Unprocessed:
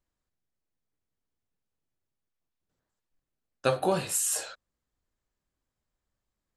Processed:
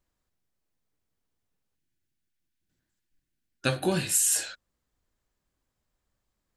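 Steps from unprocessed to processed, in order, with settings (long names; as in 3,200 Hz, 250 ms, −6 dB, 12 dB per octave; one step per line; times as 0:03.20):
gain on a spectral selection 0:01.75–0:04.57, 380–1,400 Hz −10 dB
level +4.5 dB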